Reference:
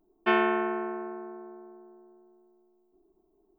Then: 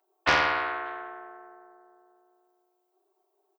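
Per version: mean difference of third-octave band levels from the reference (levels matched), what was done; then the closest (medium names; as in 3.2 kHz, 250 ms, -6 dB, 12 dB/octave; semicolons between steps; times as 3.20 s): 6.0 dB: high-pass 600 Hz 24 dB/octave; comb 5.2 ms, depth 66%; frequency-shifting echo 290 ms, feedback 33%, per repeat +130 Hz, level -23.5 dB; loudspeaker Doppler distortion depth 0.37 ms; trim +4.5 dB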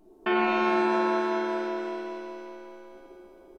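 10.5 dB: in parallel at +1 dB: compressor with a negative ratio -33 dBFS; on the sum: resampled via 32 kHz; peak limiter -19 dBFS, peak gain reduction 8.5 dB; pitch-shifted reverb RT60 2.6 s, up +7 st, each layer -8 dB, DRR -2.5 dB; trim +1.5 dB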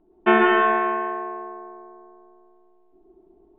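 3.0 dB: steep low-pass 3.7 kHz; treble shelf 2.6 kHz -9.5 dB; on a send: flutter echo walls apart 11.6 m, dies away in 0.5 s; on the sum: plate-style reverb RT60 1.2 s, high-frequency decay 0.95×, pre-delay 100 ms, DRR -1 dB; trim +8.5 dB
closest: third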